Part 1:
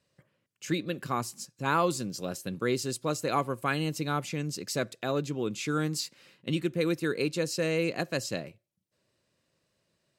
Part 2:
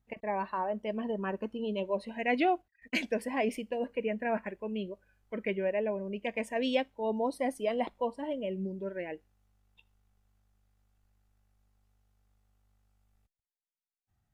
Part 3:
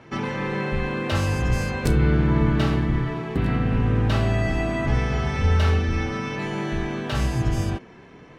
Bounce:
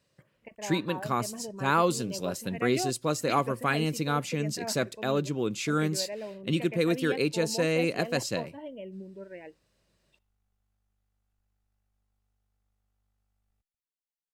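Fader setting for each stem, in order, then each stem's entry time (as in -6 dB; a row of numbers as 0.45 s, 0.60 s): +2.0 dB, -6.5 dB, mute; 0.00 s, 0.35 s, mute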